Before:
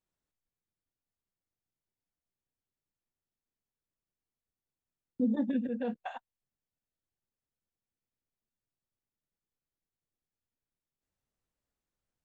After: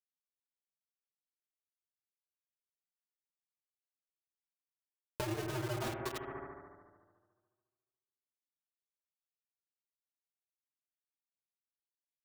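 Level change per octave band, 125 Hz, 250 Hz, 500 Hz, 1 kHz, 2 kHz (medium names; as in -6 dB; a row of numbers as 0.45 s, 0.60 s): no reading, -12.0 dB, -1.0 dB, +2.0 dB, +4.5 dB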